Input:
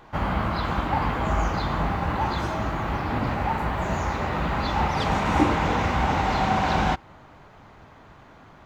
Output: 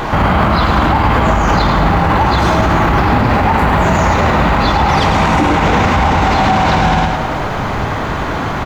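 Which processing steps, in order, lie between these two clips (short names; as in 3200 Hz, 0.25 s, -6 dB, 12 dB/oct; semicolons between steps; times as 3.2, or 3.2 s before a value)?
compressor 6:1, threshold -33 dBFS, peak gain reduction 18 dB; feedback echo 0.106 s, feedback 50%, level -7 dB; maximiser +32.5 dB; gain -2.5 dB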